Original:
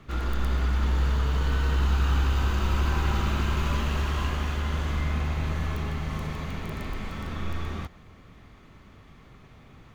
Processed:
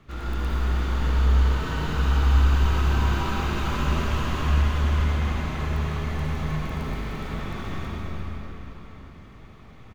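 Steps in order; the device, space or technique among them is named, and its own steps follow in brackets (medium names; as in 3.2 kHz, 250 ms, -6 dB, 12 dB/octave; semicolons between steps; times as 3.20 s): cave (delay 344 ms -9 dB; reverberation RT60 4.4 s, pre-delay 51 ms, DRR -4.5 dB); trim -4 dB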